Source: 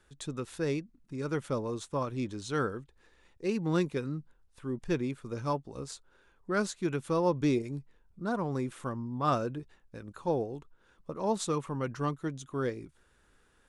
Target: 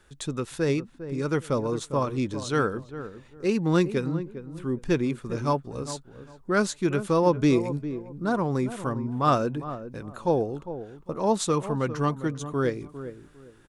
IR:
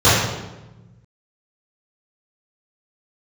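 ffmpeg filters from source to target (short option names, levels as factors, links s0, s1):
-filter_complex "[0:a]asplit=2[s0][s1];[s1]adelay=403,lowpass=f=970:p=1,volume=0.282,asplit=2[s2][s3];[s3]adelay=403,lowpass=f=970:p=1,volume=0.26,asplit=2[s4][s5];[s5]adelay=403,lowpass=f=970:p=1,volume=0.26[s6];[s0][s2][s4][s6]amix=inputs=4:normalize=0,volume=2.11"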